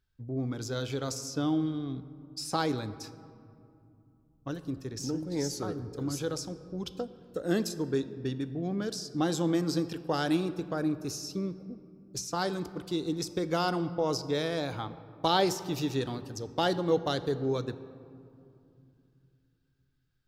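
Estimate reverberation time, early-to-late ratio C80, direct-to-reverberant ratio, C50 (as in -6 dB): 2.6 s, 15.0 dB, 12.0 dB, 14.0 dB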